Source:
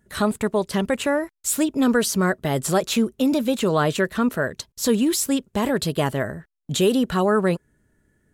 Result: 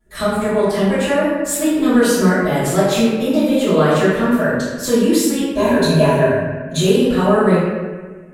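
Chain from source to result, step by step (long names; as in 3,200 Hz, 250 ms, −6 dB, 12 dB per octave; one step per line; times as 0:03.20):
0:05.46–0:06.78: EQ curve with evenly spaced ripples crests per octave 1.5, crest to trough 12 dB
convolution reverb RT60 1.4 s, pre-delay 3 ms, DRR −17.5 dB
level −13.5 dB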